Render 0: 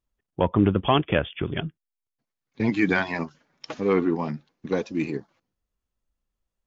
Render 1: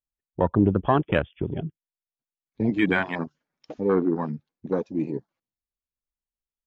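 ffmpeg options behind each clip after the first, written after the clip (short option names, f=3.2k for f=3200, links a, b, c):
-af "afwtdn=0.0355"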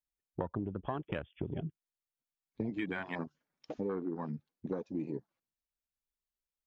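-af "acompressor=threshold=-29dB:ratio=12,volume=-3.5dB"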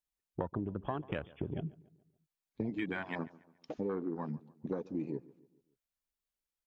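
-filter_complex "[0:a]asplit=2[a][b];[b]adelay=142,lowpass=f=2.6k:p=1,volume=-20.5dB,asplit=2[c][d];[d]adelay=142,lowpass=f=2.6k:p=1,volume=0.48,asplit=2[e][f];[f]adelay=142,lowpass=f=2.6k:p=1,volume=0.48,asplit=2[g][h];[h]adelay=142,lowpass=f=2.6k:p=1,volume=0.48[i];[a][c][e][g][i]amix=inputs=5:normalize=0"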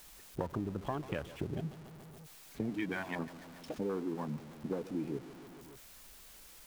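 -af "aeval=exprs='val(0)+0.5*0.00531*sgn(val(0))':c=same,volume=-1dB"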